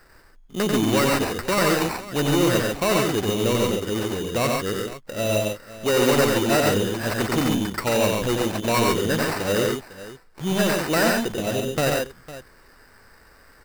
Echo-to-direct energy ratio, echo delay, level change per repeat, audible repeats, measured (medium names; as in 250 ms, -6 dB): -0.5 dB, 92 ms, no regular repeats, 3